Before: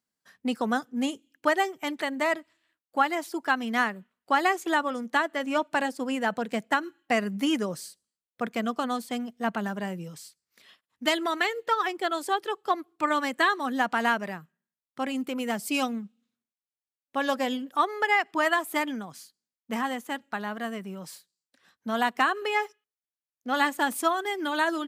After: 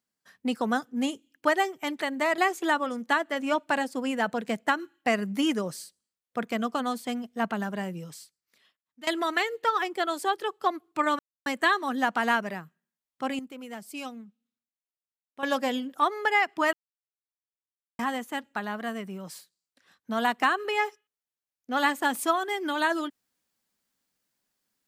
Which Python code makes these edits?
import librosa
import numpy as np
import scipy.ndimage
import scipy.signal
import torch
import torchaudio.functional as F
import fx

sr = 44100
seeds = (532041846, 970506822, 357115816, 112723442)

y = fx.edit(x, sr, fx.cut(start_s=2.38, length_s=2.04),
    fx.fade_out_to(start_s=10.2, length_s=0.91, curve='qua', floor_db=-17.5),
    fx.insert_silence(at_s=13.23, length_s=0.27),
    fx.clip_gain(start_s=15.16, length_s=2.04, db=-10.5),
    fx.silence(start_s=18.5, length_s=1.26), tone=tone)